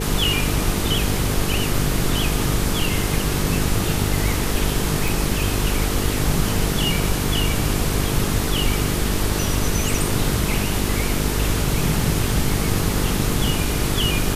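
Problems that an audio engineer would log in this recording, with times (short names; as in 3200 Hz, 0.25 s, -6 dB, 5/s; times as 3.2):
buzz 50 Hz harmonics 9 -25 dBFS
5.08 pop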